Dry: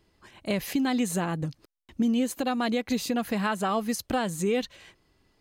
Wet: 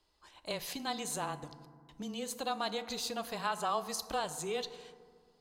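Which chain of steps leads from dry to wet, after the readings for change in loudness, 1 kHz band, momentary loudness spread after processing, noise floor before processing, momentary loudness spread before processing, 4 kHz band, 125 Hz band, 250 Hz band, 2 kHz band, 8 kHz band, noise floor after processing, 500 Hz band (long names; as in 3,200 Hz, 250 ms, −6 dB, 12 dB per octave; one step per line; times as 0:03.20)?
−9.0 dB, −4.5 dB, 15 LU, −70 dBFS, 7 LU, −2.5 dB, −15.0 dB, −17.5 dB, −8.5 dB, −4.0 dB, −70 dBFS, −8.5 dB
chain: frequency shifter −16 Hz
octave-band graphic EQ 125/250/1,000/2,000/4,000/8,000 Hz −11/−8/+6/−5/+7/+3 dB
feedback delay network reverb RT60 1.8 s, low-frequency decay 1.4×, high-frequency decay 0.4×, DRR 11.5 dB
level −8 dB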